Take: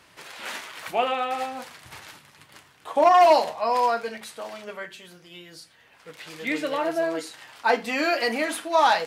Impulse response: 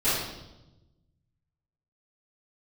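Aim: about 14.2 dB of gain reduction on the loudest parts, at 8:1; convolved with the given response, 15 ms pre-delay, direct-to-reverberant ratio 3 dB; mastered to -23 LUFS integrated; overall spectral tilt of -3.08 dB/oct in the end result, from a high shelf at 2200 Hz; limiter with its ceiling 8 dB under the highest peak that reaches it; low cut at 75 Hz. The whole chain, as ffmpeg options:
-filter_complex "[0:a]highpass=75,highshelf=f=2.2k:g=9,acompressor=threshold=-26dB:ratio=8,alimiter=limit=-23.5dB:level=0:latency=1,asplit=2[a][b];[1:a]atrim=start_sample=2205,adelay=15[c];[b][c]afir=irnorm=-1:irlink=0,volume=-16.5dB[d];[a][d]amix=inputs=2:normalize=0,volume=9dB"

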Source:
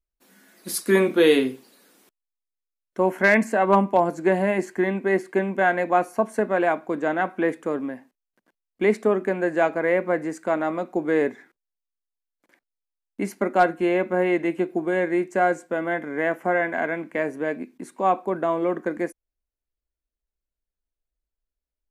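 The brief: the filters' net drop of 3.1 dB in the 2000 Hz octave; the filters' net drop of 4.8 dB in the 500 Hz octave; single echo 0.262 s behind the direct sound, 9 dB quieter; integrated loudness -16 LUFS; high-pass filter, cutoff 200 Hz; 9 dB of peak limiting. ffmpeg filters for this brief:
-af "highpass=200,equalizer=f=500:t=o:g=-6,equalizer=f=2k:t=o:g=-3.5,alimiter=limit=-17dB:level=0:latency=1,aecho=1:1:262:0.355,volume=12.5dB"

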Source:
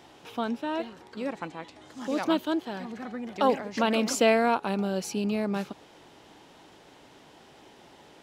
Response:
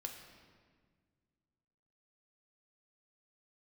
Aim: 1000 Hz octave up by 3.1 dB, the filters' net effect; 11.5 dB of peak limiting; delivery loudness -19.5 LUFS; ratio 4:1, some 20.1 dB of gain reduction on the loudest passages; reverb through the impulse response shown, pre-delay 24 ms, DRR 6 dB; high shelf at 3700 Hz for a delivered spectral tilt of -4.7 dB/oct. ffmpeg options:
-filter_complex "[0:a]equalizer=f=1k:t=o:g=4.5,highshelf=f=3.7k:g=-5,acompressor=threshold=-41dB:ratio=4,alimiter=level_in=12dB:limit=-24dB:level=0:latency=1,volume=-12dB,asplit=2[a][b];[1:a]atrim=start_sample=2205,adelay=24[c];[b][c]afir=irnorm=-1:irlink=0,volume=-3.5dB[d];[a][d]amix=inputs=2:normalize=0,volume=26.5dB"

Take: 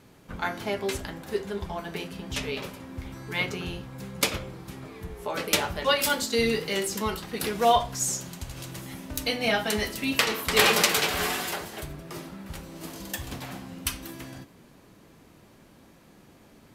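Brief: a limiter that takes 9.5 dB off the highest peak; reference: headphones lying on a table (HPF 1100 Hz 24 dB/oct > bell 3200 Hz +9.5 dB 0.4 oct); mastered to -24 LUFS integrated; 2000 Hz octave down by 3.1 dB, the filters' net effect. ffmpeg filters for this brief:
-af "equalizer=f=2k:t=o:g=-6,alimiter=limit=-16.5dB:level=0:latency=1,highpass=f=1.1k:w=0.5412,highpass=f=1.1k:w=1.3066,equalizer=f=3.2k:t=o:w=0.4:g=9.5,volume=6dB"

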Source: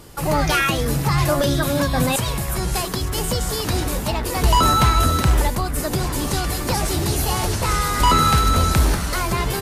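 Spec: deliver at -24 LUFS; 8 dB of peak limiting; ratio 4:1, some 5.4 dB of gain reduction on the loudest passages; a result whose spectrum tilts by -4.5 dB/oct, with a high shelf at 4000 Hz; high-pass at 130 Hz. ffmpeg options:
-af "highpass=130,highshelf=f=4k:g=-4.5,acompressor=threshold=-20dB:ratio=4,volume=2.5dB,alimiter=limit=-15dB:level=0:latency=1"

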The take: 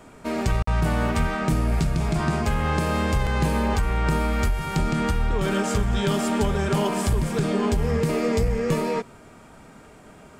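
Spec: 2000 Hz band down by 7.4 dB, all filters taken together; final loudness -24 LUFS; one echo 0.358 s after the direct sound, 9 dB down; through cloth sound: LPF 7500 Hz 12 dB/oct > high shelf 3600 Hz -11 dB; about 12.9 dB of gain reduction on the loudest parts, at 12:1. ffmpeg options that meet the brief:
-af "equalizer=f=2k:t=o:g=-7,acompressor=threshold=-31dB:ratio=12,lowpass=7.5k,highshelf=f=3.6k:g=-11,aecho=1:1:358:0.355,volume=11.5dB"

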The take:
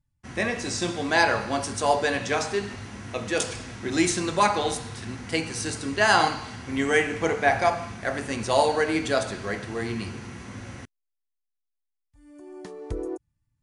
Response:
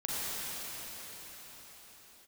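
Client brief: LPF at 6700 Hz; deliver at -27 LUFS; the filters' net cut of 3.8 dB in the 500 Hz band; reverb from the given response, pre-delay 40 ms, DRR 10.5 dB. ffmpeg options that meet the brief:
-filter_complex "[0:a]lowpass=6.7k,equalizer=f=500:t=o:g=-5,asplit=2[a][b];[1:a]atrim=start_sample=2205,adelay=40[c];[b][c]afir=irnorm=-1:irlink=0,volume=-18dB[d];[a][d]amix=inputs=2:normalize=0,volume=-0.5dB"

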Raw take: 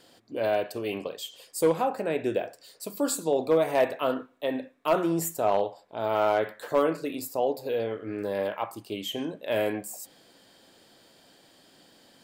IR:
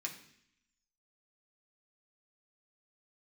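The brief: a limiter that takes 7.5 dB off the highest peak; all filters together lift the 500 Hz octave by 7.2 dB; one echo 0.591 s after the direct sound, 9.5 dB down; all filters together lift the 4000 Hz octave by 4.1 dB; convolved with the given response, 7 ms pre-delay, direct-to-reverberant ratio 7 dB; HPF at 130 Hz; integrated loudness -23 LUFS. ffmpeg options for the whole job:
-filter_complex "[0:a]highpass=130,equalizer=f=500:t=o:g=8.5,equalizer=f=4k:t=o:g=5.5,alimiter=limit=-13dB:level=0:latency=1,aecho=1:1:591:0.335,asplit=2[a][b];[1:a]atrim=start_sample=2205,adelay=7[c];[b][c]afir=irnorm=-1:irlink=0,volume=-6.5dB[d];[a][d]amix=inputs=2:normalize=0,volume=1dB"

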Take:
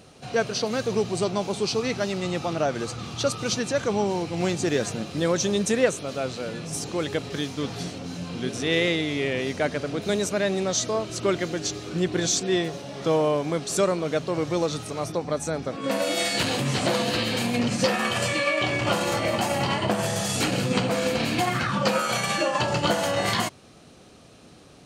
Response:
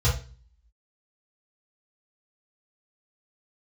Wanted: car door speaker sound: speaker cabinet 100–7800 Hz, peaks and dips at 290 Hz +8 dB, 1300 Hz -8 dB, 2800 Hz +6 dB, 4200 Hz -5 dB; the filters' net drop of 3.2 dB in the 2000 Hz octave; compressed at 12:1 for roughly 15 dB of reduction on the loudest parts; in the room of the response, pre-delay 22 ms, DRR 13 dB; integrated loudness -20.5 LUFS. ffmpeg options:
-filter_complex "[0:a]equalizer=f=2k:t=o:g=-5,acompressor=threshold=-32dB:ratio=12,asplit=2[a][b];[1:a]atrim=start_sample=2205,adelay=22[c];[b][c]afir=irnorm=-1:irlink=0,volume=-24.5dB[d];[a][d]amix=inputs=2:normalize=0,highpass=100,equalizer=f=290:t=q:w=4:g=8,equalizer=f=1.3k:t=q:w=4:g=-8,equalizer=f=2.8k:t=q:w=4:g=6,equalizer=f=4.2k:t=q:w=4:g=-5,lowpass=f=7.8k:w=0.5412,lowpass=f=7.8k:w=1.3066,volume=13.5dB"

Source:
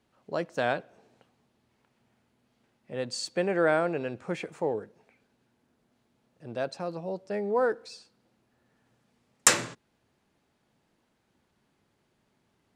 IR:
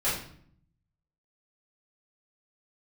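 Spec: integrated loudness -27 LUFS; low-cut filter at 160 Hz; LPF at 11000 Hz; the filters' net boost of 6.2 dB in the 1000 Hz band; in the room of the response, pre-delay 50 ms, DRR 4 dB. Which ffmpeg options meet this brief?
-filter_complex "[0:a]highpass=160,lowpass=11k,equalizer=f=1k:t=o:g=8.5,asplit=2[a][b];[1:a]atrim=start_sample=2205,adelay=50[c];[b][c]afir=irnorm=-1:irlink=0,volume=-14.5dB[d];[a][d]amix=inputs=2:normalize=0,volume=-0.5dB"

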